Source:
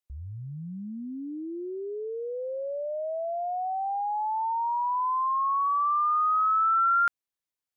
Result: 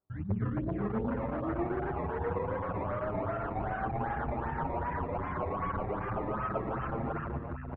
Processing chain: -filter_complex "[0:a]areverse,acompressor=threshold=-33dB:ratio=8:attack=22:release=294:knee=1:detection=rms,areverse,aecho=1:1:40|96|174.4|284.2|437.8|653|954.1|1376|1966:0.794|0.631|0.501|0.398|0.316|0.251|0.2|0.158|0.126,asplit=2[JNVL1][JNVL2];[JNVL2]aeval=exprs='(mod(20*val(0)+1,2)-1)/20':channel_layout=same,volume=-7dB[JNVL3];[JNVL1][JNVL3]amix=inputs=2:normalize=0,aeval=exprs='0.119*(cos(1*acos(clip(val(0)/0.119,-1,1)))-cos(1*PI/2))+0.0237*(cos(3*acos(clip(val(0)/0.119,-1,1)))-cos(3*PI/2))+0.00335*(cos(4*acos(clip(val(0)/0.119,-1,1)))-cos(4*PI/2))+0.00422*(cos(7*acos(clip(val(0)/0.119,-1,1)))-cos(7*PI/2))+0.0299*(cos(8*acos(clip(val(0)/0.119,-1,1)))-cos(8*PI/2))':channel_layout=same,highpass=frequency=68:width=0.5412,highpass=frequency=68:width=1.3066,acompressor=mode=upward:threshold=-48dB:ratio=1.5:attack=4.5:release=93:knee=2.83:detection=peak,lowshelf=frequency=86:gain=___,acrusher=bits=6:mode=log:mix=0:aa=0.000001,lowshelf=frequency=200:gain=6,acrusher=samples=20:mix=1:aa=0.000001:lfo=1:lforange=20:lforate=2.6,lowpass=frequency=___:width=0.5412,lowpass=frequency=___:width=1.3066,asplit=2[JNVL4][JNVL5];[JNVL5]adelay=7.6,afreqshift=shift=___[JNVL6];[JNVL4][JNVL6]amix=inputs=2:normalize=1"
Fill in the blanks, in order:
5, 1.6k, 1.6k, 0.35